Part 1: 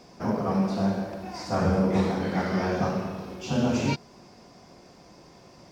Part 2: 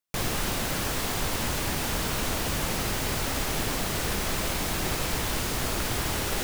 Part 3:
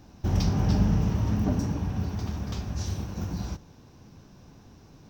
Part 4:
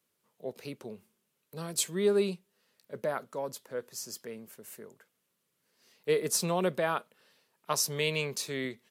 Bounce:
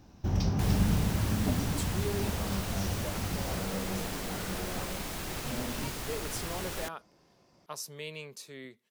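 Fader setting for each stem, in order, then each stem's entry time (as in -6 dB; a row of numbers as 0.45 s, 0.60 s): -13.5 dB, -9.0 dB, -4.0 dB, -11.0 dB; 1.95 s, 0.45 s, 0.00 s, 0.00 s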